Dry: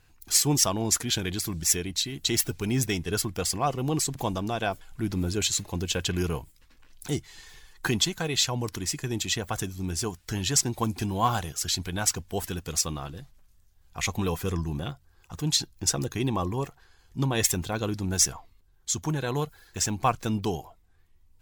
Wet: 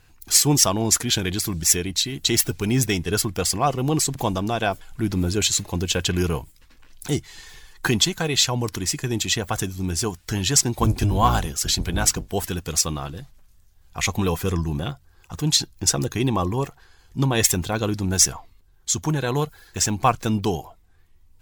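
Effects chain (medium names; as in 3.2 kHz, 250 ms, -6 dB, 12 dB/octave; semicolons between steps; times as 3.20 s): 10.78–12.29 s: octave divider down 1 oct, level +1 dB; trim +5.5 dB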